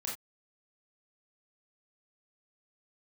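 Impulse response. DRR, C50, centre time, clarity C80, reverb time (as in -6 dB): -3.5 dB, 5.0 dB, 33 ms, 12.5 dB, no single decay rate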